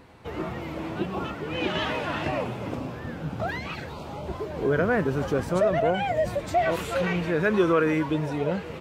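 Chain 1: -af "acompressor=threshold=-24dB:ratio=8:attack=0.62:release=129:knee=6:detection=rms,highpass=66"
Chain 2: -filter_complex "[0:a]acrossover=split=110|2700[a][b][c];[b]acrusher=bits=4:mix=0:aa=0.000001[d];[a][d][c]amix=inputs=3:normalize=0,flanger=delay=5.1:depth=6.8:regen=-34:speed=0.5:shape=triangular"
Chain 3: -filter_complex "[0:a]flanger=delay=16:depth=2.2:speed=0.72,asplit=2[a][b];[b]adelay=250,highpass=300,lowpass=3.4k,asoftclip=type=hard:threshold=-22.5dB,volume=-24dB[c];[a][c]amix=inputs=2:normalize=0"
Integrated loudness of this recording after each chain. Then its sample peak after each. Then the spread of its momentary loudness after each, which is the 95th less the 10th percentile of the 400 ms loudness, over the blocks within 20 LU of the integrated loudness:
-32.5, -29.5, -30.0 LUFS; -20.0, -13.0, -12.5 dBFS; 6, 12, 11 LU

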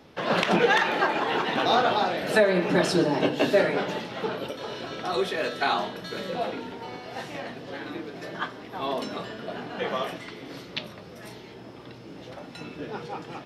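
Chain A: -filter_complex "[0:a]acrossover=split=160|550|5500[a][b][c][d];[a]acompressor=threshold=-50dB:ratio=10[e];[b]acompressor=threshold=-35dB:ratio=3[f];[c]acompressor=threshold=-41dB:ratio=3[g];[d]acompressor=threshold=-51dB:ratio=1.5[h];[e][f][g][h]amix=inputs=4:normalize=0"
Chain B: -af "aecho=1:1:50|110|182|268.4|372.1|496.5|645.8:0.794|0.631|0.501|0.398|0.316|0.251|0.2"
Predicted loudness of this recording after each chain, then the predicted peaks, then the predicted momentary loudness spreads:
-36.0, -22.5 LUFS; -16.5, -5.5 dBFS; 10, 19 LU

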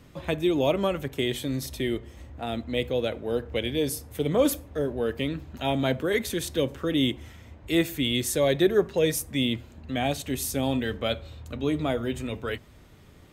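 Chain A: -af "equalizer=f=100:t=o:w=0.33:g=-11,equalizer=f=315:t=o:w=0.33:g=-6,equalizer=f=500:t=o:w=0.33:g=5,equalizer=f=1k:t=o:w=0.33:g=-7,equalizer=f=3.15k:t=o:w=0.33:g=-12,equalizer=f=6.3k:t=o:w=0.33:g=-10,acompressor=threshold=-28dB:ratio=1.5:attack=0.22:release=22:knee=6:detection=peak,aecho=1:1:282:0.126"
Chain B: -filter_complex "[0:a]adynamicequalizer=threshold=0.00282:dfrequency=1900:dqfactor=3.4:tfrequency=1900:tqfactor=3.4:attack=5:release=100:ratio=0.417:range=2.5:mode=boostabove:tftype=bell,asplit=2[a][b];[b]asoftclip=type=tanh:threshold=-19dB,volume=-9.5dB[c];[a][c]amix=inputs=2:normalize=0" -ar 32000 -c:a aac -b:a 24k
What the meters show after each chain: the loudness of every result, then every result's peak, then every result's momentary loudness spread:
-30.5, -25.0 LUFS; -15.0, -8.0 dBFS; 9, 9 LU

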